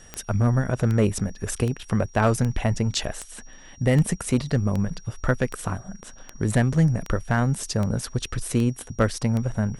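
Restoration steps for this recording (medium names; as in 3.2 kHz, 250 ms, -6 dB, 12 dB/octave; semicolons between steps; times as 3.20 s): clip repair -11 dBFS; de-click; band-stop 5.7 kHz, Q 30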